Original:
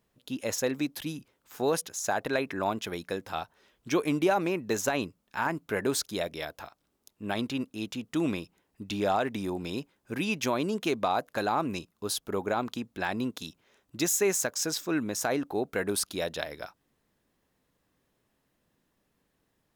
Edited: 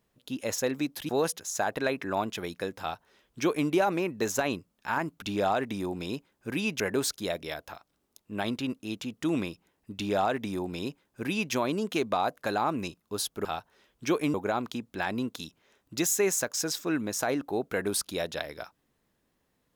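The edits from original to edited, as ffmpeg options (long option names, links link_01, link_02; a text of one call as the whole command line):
ffmpeg -i in.wav -filter_complex "[0:a]asplit=6[link_01][link_02][link_03][link_04][link_05][link_06];[link_01]atrim=end=1.092[link_07];[link_02]atrim=start=1.578:end=5.712[link_08];[link_03]atrim=start=8.858:end=10.442[link_09];[link_04]atrim=start=5.708:end=12.362[link_10];[link_05]atrim=start=3.288:end=4.182[link_11];[link_06]atrim=start=12.358[link_12];[link_07][link_08]acrossfade=duration=0.004:curve1=hsin:curve2=hsin[link_13];[link_13][link_09]acrossfade=duration=0.004:curve1=hsin:curve2=hsin[link_14];[link_14][link_10]acrossfade=duration=0.004:curve1=hsin:curve2=hsin[link_15];[link_15][link_11]acrossfade=duration=0.004:curve1=hsin:curve2=hsin[link_16];[link_16][link_12]acrossfade=duration=0.004:curve1=hsin:curve2=hsin" out.wav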